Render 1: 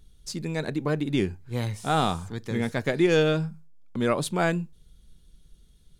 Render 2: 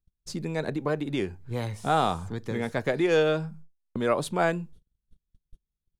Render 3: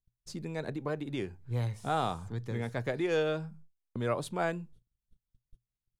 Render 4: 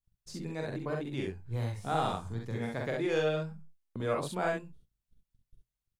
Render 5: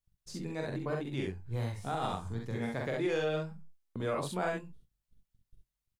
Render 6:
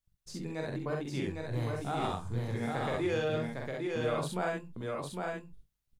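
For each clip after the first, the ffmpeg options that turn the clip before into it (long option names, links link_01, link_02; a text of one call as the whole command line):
ffmpeg -i in.wav -filter_complex "[0:a]agate=range=-34dB:threshold=-45dB:ratio=16:detection=peak,tiltshelf=frequency=1300:gain=4.5,acrossover=split=450|3600[link_01][link_02][link_03];[link_01]acompressor=threshold=-31dB:ratio=6[link_04];[link_04][link_02][link_03]amix=inputs=3:normalize=0" out.wav
ffmpeg -i in.wav -af "equalizer=frequency=120:width=7.9:gain=10.5,volume=-7dB" out.wav
ffmpeg -i in.wav -af "aecho=1:1:44|65:0.708|0.631,volume=-2.5dB" out.wav
ffmpeg -i in.wav -filter_complex "[0:a]alimiter=limit=-23dB:level=0:latency=1:release=83,asplit=2[link_01][link_02];[link_02]adelay=22,volume=-14dB[link_03];[link_01][link_03]amix=inputs=2:normalize=0" out.wav
ffmpeg -i in.wav -af "aecho=1:1:806:0.668" out.wav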